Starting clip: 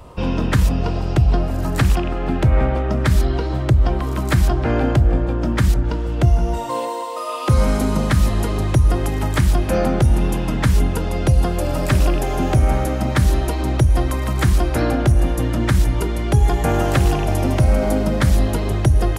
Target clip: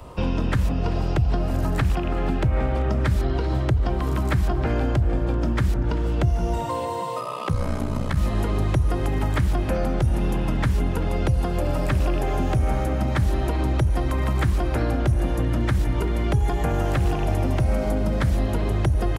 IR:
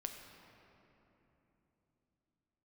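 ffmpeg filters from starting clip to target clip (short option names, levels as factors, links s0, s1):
-filter_complex "[0:a]acrossover=split=96|3300[s0][s1][s2];[s0]acompressor=threshold=0.0891:ratio=4[s3];[s1]acompressor=threshold=0.0631:ratio=4[s4];[s2]acompressor=threshold=0.00447:ratio=4[s5];[s3][s4][s5]amix=inputs=3:normalize=0,asettb=1/sr,asplit=3[s6][s7][s8];[s6]atrim=end=7.204[s9];[s7]atrim=start=7.2:end=8.17,asetpts=PTS-STARTPTS,afade=t=in:d=0.004:c=qsin,afade=t=out:st=0.966:d=0.004:c=qsin,aeval=exprs='val(0)*sin(2*PI*31*n/s)':c=same[s10];[s8]atrim=start=8.166[s11];[s9][s10]acrossfade=d=0.004:c1=hsin:c2=qsin[s12];[s12][s11]acrossfade=d=0.004:c1=qsin:c2=hsin,asplit=2[s13][s14];[s14]asplit=4[s15][s16][s17][s18];[s15]adelay=388,afreqshift=35,volume=0.126[s19];[s16]adelay=776,afreqshift=70,volume=0.0617[s20];[s17]adelay=1164,afreqshift=105,volume=0.0302[s21];[s18]adelay=1552,afreqshift=140,volume=0.0148[s22];[s19][s20][s21][s22]amix=inputs=4:normalize=0[s23];[s13][s23]amix=inputs=2:normalize=0"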